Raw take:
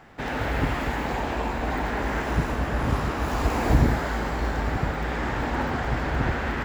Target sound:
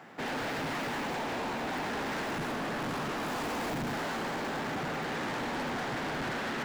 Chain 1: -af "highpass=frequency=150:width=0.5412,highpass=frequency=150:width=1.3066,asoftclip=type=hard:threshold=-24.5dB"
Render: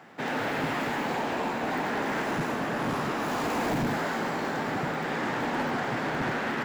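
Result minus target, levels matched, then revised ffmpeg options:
hard clipping: distortion −7 dB
-af "highpass=frequency=150:width=0.5412,highpass=frequency=150:width=1.3066,asoftclip=type=hard:threshold=-32.5dB"

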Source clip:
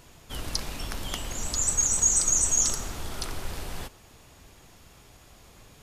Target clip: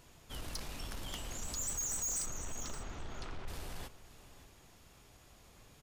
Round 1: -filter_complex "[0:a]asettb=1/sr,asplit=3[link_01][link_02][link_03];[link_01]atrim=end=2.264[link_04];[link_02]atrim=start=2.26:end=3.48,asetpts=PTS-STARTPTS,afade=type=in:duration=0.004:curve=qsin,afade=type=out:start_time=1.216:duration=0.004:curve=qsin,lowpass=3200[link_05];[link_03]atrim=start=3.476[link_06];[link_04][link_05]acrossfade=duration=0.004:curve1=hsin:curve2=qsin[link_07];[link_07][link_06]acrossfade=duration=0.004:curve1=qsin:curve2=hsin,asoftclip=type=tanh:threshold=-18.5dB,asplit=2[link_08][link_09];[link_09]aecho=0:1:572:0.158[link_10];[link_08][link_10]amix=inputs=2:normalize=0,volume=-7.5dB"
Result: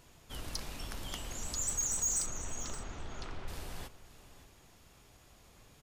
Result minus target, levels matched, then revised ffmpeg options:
soft clipping: distortion −7 dB
-filter_complex "[0:a]asettb=1/sr,asplit=3[link_01][link_02][link_03];[link_01]atrim=end=2.264[link_04];[link_02]atrim=start=2.26:end=3.48,asetpts=PTS-STARTPTS,afade=type=in:duration=0.004:curve=qsin,afade=type=out:start_time=1.216:duration=0.004:curve=qsin,lowpass=3200[link_05];[link_03]atrim=start=3.476[link_06];[link_04][link_05]acrossfade=duration=0.004:curve1=hsin:curve2=qsin[link_07];[link_07][link_06]acrossfade=duration=0.004:curve1=qsin:curve2=hsin,asoftclip=type=tanh:threshold=-26dB,asplit=2[link_08][link_09];[link_09]aecho=0:1:572:0.158[link_10];[link_08][link_10]amix=inputs=2:normalize=0,volume=-7.5dB"

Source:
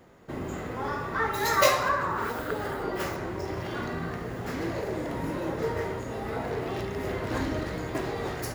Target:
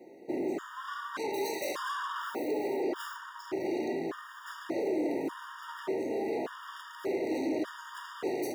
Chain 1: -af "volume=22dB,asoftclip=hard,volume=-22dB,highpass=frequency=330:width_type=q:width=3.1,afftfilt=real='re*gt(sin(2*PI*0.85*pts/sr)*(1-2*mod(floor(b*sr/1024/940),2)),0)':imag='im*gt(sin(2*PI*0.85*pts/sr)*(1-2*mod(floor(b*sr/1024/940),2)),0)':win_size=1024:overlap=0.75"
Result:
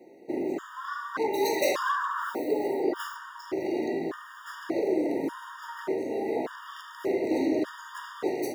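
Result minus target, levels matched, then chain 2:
gain into a clipping stage and back: distortion −8 dB
-af "volume=33dB,asoftclip=hard,volume=-33dB,highpass=frequency=330:width_type=q:width=3.1,afftfilt=real='re*gt(sin(2*PI*0.85*pts/sr)*(1-2*mod(floor(b*sr/1024/940),2)),0)':imag='im*gt(sin(2*PI*0.85*pts/sr)*(1-2*mod(floor(b*sr/1024/940),2)),0)':win_size=1024:overlap=0.75"

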